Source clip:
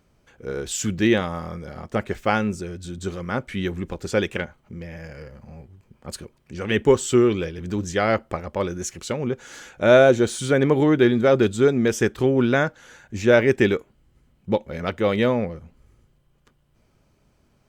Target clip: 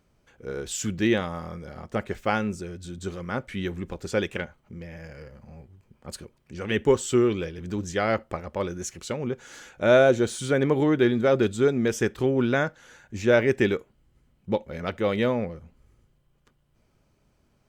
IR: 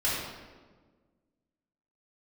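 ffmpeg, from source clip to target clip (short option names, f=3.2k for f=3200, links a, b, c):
-filter_complex "[0:a]asplit=2[a][b];[1:a]atrim=start_sample=2205,atrim=end_sample=3528[c];[b][c]afir=irnorm=-1:irlink=0,volume=-33dB[d];[a][d]amix=inputs=2:normalize=0,volume=-4dB"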